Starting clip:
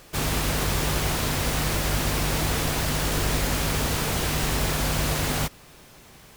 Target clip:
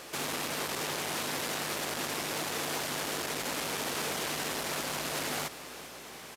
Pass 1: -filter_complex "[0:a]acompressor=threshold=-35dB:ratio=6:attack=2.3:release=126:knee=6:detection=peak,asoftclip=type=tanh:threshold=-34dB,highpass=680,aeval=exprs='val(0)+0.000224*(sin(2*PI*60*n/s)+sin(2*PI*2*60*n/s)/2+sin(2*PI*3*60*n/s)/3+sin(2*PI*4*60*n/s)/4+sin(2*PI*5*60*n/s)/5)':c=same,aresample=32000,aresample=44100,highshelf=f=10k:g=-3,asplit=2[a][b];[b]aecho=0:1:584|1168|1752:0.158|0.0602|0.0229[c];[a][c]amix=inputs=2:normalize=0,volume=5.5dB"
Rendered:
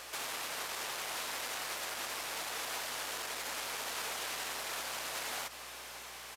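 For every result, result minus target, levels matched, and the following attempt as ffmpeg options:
250 Hz band -11.0 dB; echo 0.186 s late; compressor: peak gain reduction +8 dB
-filter_complex "[0:a]acompressor=threshold=-35dB:ratio=6:attack=2.3:release=126:knee=6:detection=peak,asoftclip=type=tanh:threshold=-34dB,highpass=270,aeval=exprs='val(0)+0.000224*(sin(2*PI*60*n/s)+sin(2*PI*2*60*n/s)/2+sin(2*PI*3*60*n/s)/3+sin(2*PI*4*60*n/s)/4+sin(2*PI*5*60*n/s)/5)':c=same,aresample=32000,aresample=44100,highshelf=f=10k:g=-3,asplit=2[a][b];[b]aecho=0:1:584|1168|1752:0.158|0.0602|0.0229[c];[a][c]amix=inputs=2:normalize=0,volume=5.5dB"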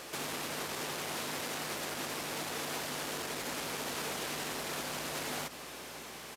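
echo 0.186 s late; compressor: peak gain reduction +8 dB
-filter_complex "[0:a]acompressor=threshold=-35dB:ratio=6:attack=2.3:release=126:knee=6:detection=peak,asoftclip=type=tanh:threshold=-34dB,highpass=270,aeval=exprs='val(0)+0.000224*(sin(2*PI*60*n/s)+sin(2*PI*2*60*n/s)/2+sin(2*PI*3*60*n/s)/3+sin(2*PI*4*60*n/s)/4+sin(2*PI*5*60*n/s)/5)':c=same,aresample=32000,aresample=44100,highshelf=f=10k:g=-3,asplit=2[a][b];[b]aecho=0:1:398|796|1194:0.158|0.0602|0.0229[c];[a][c]amix=inputs=2:normalize=0,volume=5.5dB"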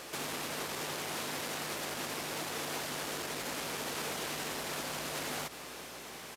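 compressor: peak gain reduction +8 dB
-filter_complex "[0:a]acompressor=threshold=-25.5dB:ratio=6:attack=2.3:release=126:knee=6:detection=peak,asoftclip=type=tanh:threshold=-34dB,highpass=270,aeval=exprs='val(0)+0.000224*(sin(2*PI*60*n/s)+sin(2*PI*2*60*n/s)/2+sin(2*PI*3*60*n/s)/3+sin(2*PI*4*60*n/s)/4+sin(2*PI*5*60*n/s)/5)':c=same,aresample=32000,aresample=44100,highshelf=f=10k:g=-3,asplit=2[a][b];[b]aecho=0:1:398|796|1194:0.158|0.0602|0.0229[c];[a][c]amix=inputs=2:normalize=0,volume=5.5dB"

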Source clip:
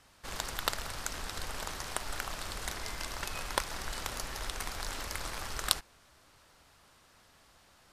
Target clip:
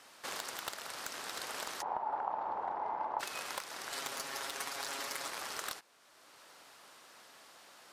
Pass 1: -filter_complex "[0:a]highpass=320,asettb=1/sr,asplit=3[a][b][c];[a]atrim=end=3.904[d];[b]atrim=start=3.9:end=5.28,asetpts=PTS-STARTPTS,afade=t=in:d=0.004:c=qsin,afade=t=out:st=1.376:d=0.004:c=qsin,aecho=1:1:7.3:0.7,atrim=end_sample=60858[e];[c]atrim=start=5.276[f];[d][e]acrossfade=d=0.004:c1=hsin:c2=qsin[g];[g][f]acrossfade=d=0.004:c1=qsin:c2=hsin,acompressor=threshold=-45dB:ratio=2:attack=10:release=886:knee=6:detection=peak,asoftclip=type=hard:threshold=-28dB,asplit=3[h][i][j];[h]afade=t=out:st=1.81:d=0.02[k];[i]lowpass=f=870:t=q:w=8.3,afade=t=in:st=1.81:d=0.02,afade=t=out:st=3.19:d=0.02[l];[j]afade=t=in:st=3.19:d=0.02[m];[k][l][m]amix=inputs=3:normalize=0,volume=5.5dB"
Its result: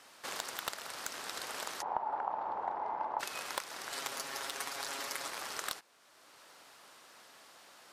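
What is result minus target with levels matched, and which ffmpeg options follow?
hard clip: distortion -4 dB
-filter_complex "[0:a]highpass=320,asettb=1/sr,asplit=3[a][b][c];[a]atrim=end=3.904[d];[b]atrim=start=3.9:end=5.28,asetpts=PTS-STARTPTS,afade=t=in:d=0.004:c=qsin,afade=t=out:st=1.376:d=0.004:c=qsin,aecho=1:1:7.3:0.7,atrim=end_sample=60858[e];[c]atrim=start=5.276[f];[d][e]acrossfade=d=0.004:c1=hsin:c2=qsin[g];[g][f]acrossfade=d=0.004:c1=qsin:c2=hsin,acompressor=threshold=-45dB:ratio=2:attack=10:release=886:knee=6:detection=peak,asoftclip=type=hard:threshold=-34.5dB,asplit=3[h][i][j];[h]afade=t=out:st=1.81:d=0.02[k];[i]lowpass=f=870:t=q:w=8.3,afade=t=in:st=1.81:d=0.02,afade=t=out:st=3.19:d=0.02[l];[j]afade=t=in:st=3.19:d=0.02[m];[k][l][m]amix=inputs=3:normalize=0,volume=5.5dB"

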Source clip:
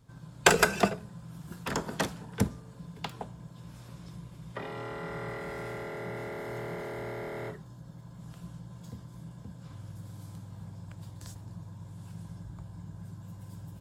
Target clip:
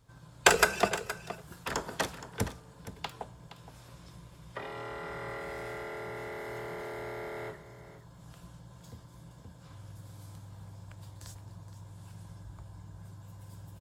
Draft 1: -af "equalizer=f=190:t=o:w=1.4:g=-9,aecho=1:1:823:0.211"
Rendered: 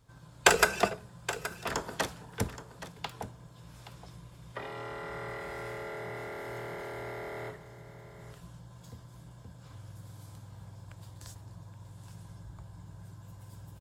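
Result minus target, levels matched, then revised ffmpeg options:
echo 0.354 s late
-af "equalizer=f=190:t=o:w=1.4:g=-9,aecho=1:1:469:0.211"

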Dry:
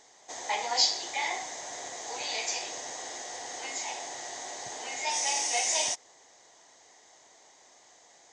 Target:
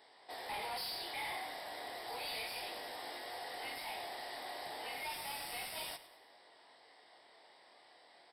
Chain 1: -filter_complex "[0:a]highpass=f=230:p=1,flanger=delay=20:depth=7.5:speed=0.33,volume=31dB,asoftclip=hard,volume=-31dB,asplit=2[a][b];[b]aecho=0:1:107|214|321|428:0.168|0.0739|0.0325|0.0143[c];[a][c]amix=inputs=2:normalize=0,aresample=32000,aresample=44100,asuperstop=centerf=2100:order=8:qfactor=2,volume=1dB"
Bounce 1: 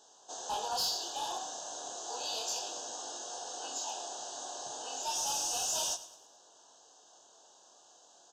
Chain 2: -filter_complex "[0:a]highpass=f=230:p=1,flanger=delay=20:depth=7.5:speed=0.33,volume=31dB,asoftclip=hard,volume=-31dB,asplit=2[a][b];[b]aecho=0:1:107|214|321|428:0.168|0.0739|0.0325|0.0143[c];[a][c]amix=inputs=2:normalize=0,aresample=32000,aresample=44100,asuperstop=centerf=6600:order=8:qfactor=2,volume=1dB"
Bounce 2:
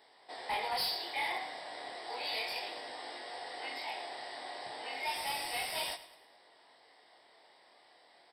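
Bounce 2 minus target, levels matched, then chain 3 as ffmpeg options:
overloaded stage: distortion -6 dB
-filter_complex "[0:a]highpass=f=230:p=1,flanger=delay=20:depth=7.5:speed=0.33,volume=40dB,asoftclip=hard,volume=-40dB,asplit=2[a][b];[b]aecho=0:1:107|214|321|428:0.168|0.0739|0.0325|0.0143[c];[a][c]amix=inputs=2:normalize=0,aresample=32000,aresample=44100,asuperstop=centerf=6600:order=8:qfactor=2,volume=1dB"

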